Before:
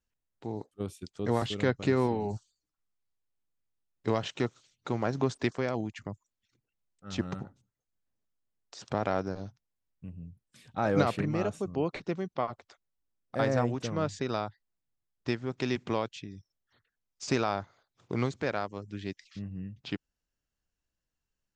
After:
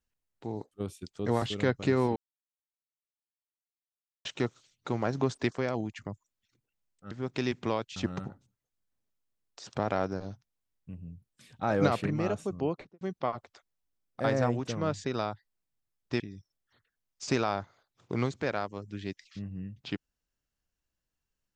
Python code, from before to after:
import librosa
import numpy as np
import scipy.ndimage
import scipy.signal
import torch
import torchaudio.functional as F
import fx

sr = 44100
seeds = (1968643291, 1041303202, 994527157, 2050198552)

y = fx.studio_fade_out(x, sr, start_s=11.76, length_s=0.4)
y = fx.edit(y, sr, fx.silence(start_s=2.16, length_s=2.09),
    fx.move(start_s=15.35, length_s=0.85, to_s=7.11), tone=tone)